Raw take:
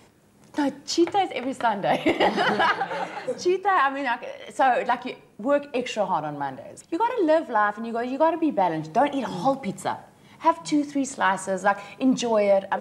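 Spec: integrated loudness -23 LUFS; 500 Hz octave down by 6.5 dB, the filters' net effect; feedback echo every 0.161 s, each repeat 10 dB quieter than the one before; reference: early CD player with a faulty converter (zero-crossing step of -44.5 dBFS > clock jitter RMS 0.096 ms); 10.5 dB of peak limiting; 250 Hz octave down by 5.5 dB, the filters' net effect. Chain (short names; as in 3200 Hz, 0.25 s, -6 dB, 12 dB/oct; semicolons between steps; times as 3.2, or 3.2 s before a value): bell 250 Hz -4 dB; bell 500 Hz -8 dB; limiter -21 dBFS; feedback echo 0.161 s, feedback 32%, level -10 dB; zero-crossing step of -44.5 dBFS; clock jitter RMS 0.096 ms; gain +7 dB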